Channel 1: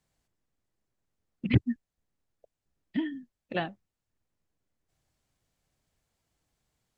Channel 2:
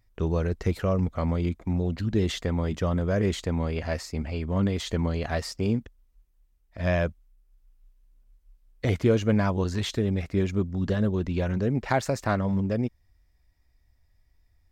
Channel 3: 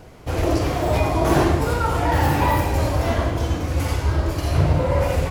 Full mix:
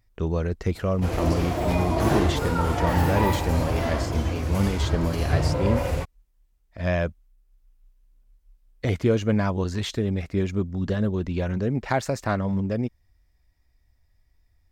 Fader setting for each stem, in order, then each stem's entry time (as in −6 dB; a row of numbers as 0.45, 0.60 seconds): −11.5, +0.5, −5.0 decibels; 0.10, 0.00, 0.75 seconds